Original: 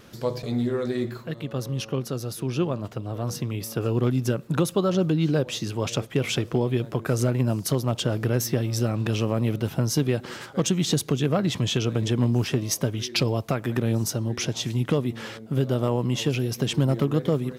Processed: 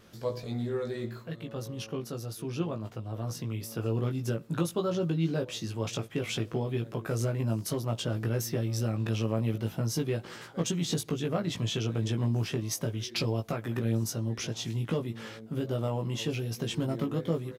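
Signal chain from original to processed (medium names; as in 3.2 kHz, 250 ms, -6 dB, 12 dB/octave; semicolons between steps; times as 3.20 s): doubling 18 ms -3.5 dB; trim -8.5 dB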